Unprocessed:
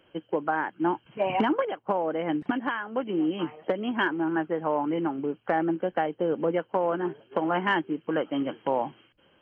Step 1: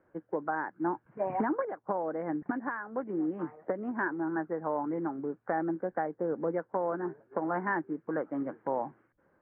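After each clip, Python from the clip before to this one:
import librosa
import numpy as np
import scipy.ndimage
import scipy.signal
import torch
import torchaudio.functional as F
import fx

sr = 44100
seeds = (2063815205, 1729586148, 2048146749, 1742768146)

y = scipy.signal.sosfilt(scipy.signal.butter(8, 1900.0, 'lowpass', fs=sr, output='sos'), x)
y = F.gain(torch.from_numpy(y), -5.5).numpy()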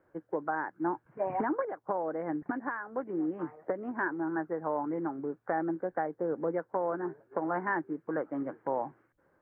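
y = fx.peak_eq(x, sr, hz=210.0, db=-5.5, octaves=0.38)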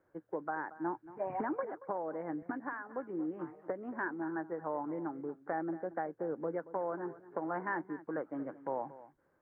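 y = x + 10.0 ** (-16.5 / 20.0) * np.pad(x, (int(229 * sr / 1000.0), 0))[:len(x)]
y = F.gain(torch.from_numpy(y), -5.0).numpy()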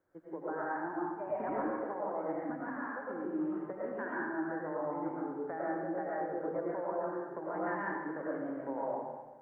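y = fx.rev_freeverb(x, sr, rt60_s=1.2, hf_ratio=0.85, predelay_ms=65, drr_db=-7.0)
y = F.gain(torch.from_numpy(y), -6.0).numpy()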